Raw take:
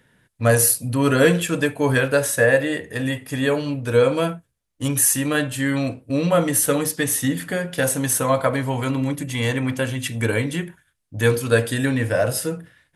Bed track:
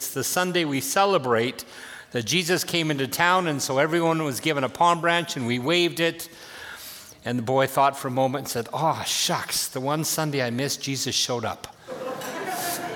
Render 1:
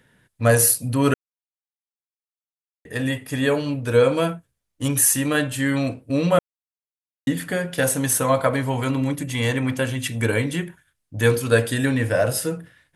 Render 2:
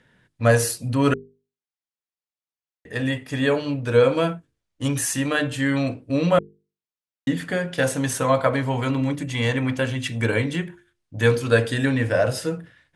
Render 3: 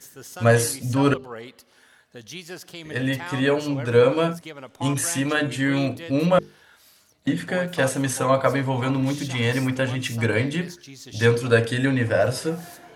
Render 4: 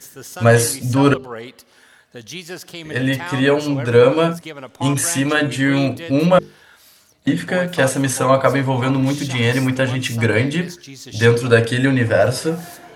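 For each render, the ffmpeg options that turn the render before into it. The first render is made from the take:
-filter_complex "[0:a]asplit=5[s0][s1][s2][s3][s4];[s0]atrim=end=1.14,asetpts=PTS-STARTPTS,afade=t=out:st=1.136:d=0.004:c=hsin[s5];[s1]atrim=start=1.14:end=2.85,asetpts=PTS-STARTPTS,volume=0[s6];[s2]atrim=start=2.85:end=6.39,asetpts=PTS-STARTPTS,afade=t=in:d=0.004:c=hsin,afade=t=out:st=3.536:d=0.004:c=hsin[s7];[s3]atrim=start=6.39:end=7.27,asetpts=PTS-STARTPTS,volume=0[s8];[s4]atrim=start=7.27,asetpts=PTS-STARTPTS,afade=t=in:d=0.004:c=hsin[s9];[s5][s6][s7][s8][s9]concat=n=5:v=0:a=1"
-af "lowpass=6300,bandreject=f=50:t=h:w=6,bandreject=f=100:t=h:w=6,bandreject=f=150:t=h:w=6,bandreject=f=200:t=h:w=6,bandreject=f=250:t=h:w=6,bandreject=f=300:t=h:w=6,bandreject=f=350:t=h:w=6,bandreject=f=400:t=h:w=6,bandreject=f=450:t=h:w=6"
-filter_complex "[1:a]volume=0.178[s0];[0:a][s0]amix=inputs=2:normalize=0"
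-af "volume=1.88,alimiter=limit=0.891:level=0:latency=1"

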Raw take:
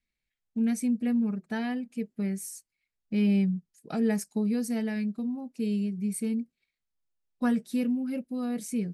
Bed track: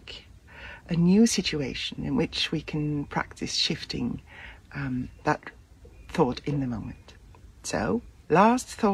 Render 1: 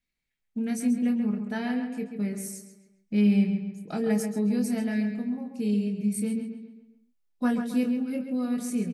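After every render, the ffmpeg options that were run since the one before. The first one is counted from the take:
-filter_complex "[0:a]asplit=2[s0][s1];[s1]adelay=24,volume=0.501[s2];[s0][s2]amix=inputs=2:normalize=0,asplit=2[s3][s4];[s4]adelay=135,lowpass=f=3800:p=1,volume=0.447,asplit=2[s5][s6];[s6]adelay=135,lowpass=f=3800:p=1,volume=0.46,asplit=2[s7][s8];[s8]adelay=135,lowpass=f=3800:p=1,volume=0.46,asplit=2[s9][s10];[s10]adelay=135,lowpass=f=3800:p=1,volume=0.46,asplit=2[s11][s12];[s12]adelay=135,lowpass=f=3800:p=1,volume=0.46[s13];[s5][s7][s9][s11][s13]amix=inputs=5:normalize=0[s14];[s3][s14]amix=inputs=2:normalize=0"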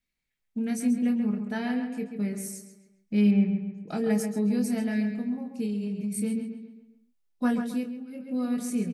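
-filter_complex "[0:a]asplit=3[s0][s1][s2];[s0]afade=t=out:st=3.3:d=0.02[s3];[s1]lowpass=2200,afade=t=in:st=3.3:d=0.02,afade=t=out:st=3.86:d=0.02[s4];[s2]afade=t=in:st=3.86:d=0.02[s5];[s3][s4][s5]amix=inputs=3:normalize=0,asplit=3[s6][s7][s8];[s6]afade=t=out:st=5.65:d=0.02[s9];[s7]acompressor=threshold=0.0447:ratio=6:attack=3.2:release=140:knee=1:detection=peak,afade=t=in:st=5.65:d=0.02,afade=t=out:st=6.11:d=0.02[s10];[s8]afade=t=in:st=6.11:d=0.02[s11];[s9][s10][s11]amix=inputs=3:normalize=0,asplit=3[s12][s13][s14];[s12]atrim=end=7.95,asetpts=PTS-STARTPTS,afade=t=out:st=7.69:d=0.26:c=qua:silence=0.316228[s15];[s13]atrim=start=7.95:end=8.11,asetpts=PTS-STARTPTS,volume=0.316[s16];[s14]atrim=start=8.11,asetpts=PTS-STARTPTS,afade=t=in:d=0.26:c=qua:silence=0.316228[s17];[s15][s16][s17]concat=n=3:v=0:a=1"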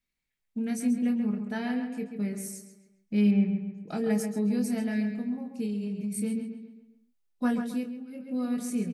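-af "volume=0.841"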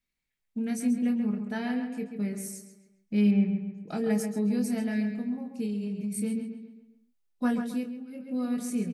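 -af anull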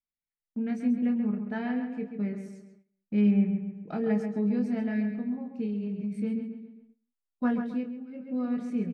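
-af "lowpass=2300,agate=range=0.178:threshold=0.00158:ratio=16:detection=peak"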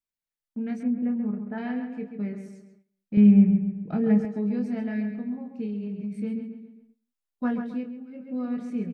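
-filter_complex "[0:a]asettb=1/sr,asplit=3[s0][s1][s2];[s0]atrim=end=0.834[s3];[s1]atrim=start=0.83:end=1.58,asetpts=PTS-STARTPTS,afade=t=in:d=0.004:c=qsin,afade=t=out:st=0.746:d=0.004:c=qsin,lowpass=1600[s4];[s2]atrim=start=1.576[s5];[s3][s4]acrossfade=d=0.004:c1=hsin:c2=qsin[s6];[s6][s5]acrossfade=d=0.004:c1=qsin:c2=hsin,asettb=1/sr,asplit=3[s7][s8][s9];[s7]atrim=end=3.174[s10];[s8]atrim=start=3.17:end=4.25,asetpts=PTS-STARTPTS,afade=t=in:d=0.004:c=qsin,afade=t=out:st=1.076:d=0.004:c=qsin,bass=f=250:g=11,treble=f=4000:g=-6[s11];[s9]atrim=start=4.246[s12];[s10][s11]acrossfade=d=0.004:c1=hsin:c2=qsin[s13];[s13][s12]acrossfade=d=0.004:c1=qsin:c2=hsin"

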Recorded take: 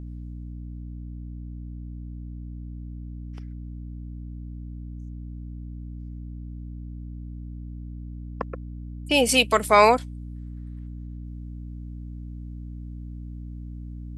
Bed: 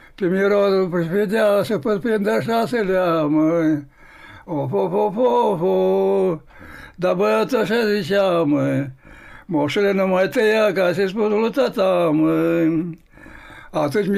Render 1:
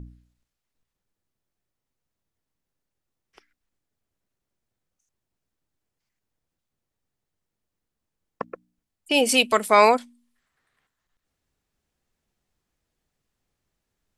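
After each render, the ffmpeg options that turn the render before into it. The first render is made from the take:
-af "bandreject=f=60:t=h:w=4,bandreject=f=120:t=h:w=4,bandreject=f=180:t=h:w=4,bandreject=f=240:t=h:w=4,bandreject=f=300:t=h:w=4"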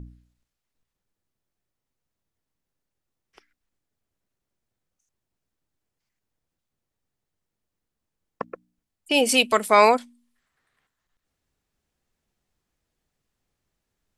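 -af anull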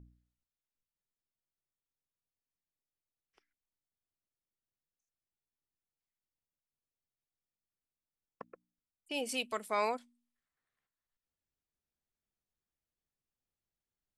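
-af "volume=0.141"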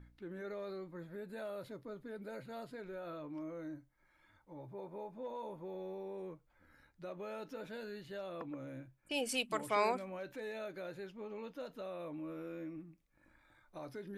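-filter_complex "[1:a]volume=0.0422[s0];[0:a][s0]amix=inputs=2:normalize=0"

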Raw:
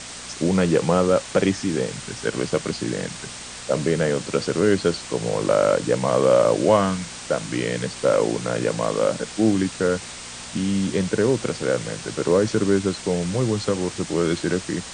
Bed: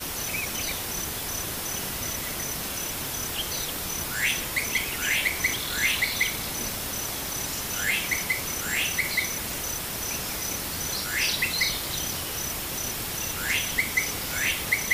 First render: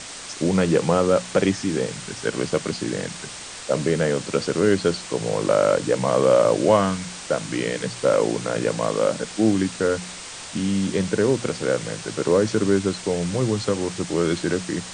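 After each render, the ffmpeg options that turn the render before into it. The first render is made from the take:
-af "bandreject=f=60:t=h:w=4,bandreject=f=120:t=h:w=4,bandreject=f=180:t=h:w=4,bandreject=f=240:t=h:w=4"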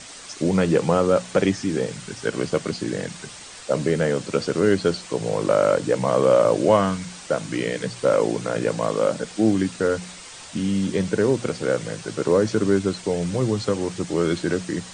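-af "afftdn=nr=6:nf=-37"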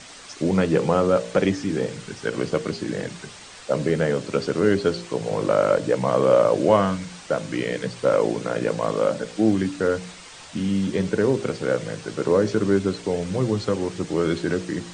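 -af "highshelf=f=8300:g=-11,bandreject=f=57.68:t=h:w=4,bandreject=f=115.36:t=h:w=4,bandreject=f=173.04:t=h:w=4,bandreject=f=230.72:t=h:w=4,bandreject=f=288.4:t=h:w=4,bandreject=f=346.08:t=h:w=4,bandreject=f=403.76:t=h:w=4,bandreject=f=461.44:t=h:w=4,bandreject=f=519.12:t=h:w=4,bandreject=f=576.8:t=h:w=4,bandreject=f=634.48:t=h:w=4"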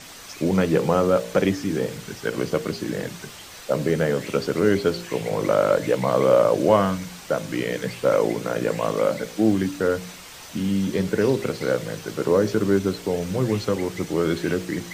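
-filter_complex "[1:a]volume=0.15[s0];[0:a][s0]amix=inputs=2:normalize=0"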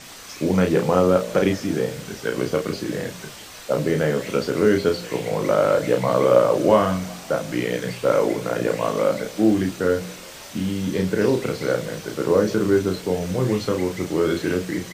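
-filter_complex "[0:a]asplit=2[s0][s1];[s1]adelay=33,volume=0.562[s2];[s0][s2]amix=inputs=2:normalize=0,asplit=6[s3][s4][s5][s6][s7][s8];[s4]adelay=184,afreqshift=41,volume=0.0631[s9];[s5]adelay=368,afreqshift=82,volume=0.0403[s10];[s6]adelay=552,afreqshift=123,volume=0.0257[s11];[s7]adelay=736,afreqshift=164,volume=0.0166[s12];[s8]adelay=920,afreqshift=205,volume=0.0106[s13];[s3][s9][s10][s11][s12][s13]amix=inputs=6:normalize=0"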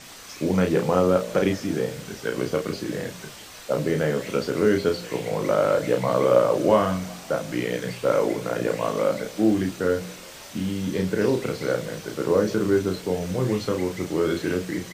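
-af "volume=0.75"

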